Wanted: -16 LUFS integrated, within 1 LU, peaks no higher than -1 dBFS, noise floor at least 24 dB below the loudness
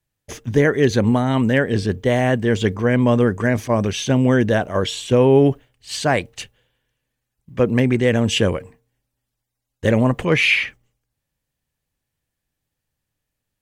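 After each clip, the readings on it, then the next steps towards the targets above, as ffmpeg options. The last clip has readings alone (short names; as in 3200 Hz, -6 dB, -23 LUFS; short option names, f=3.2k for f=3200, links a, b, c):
loudness -18.0 LUFS; peak -3.5 dBFS; loudness target -16.0 LUFS
-> -af "volume=2dB"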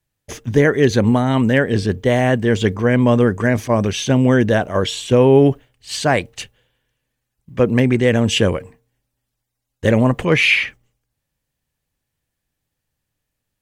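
loudness -16.0 LUFS; peak -1.5 dBFS; noise floor -79 dBFS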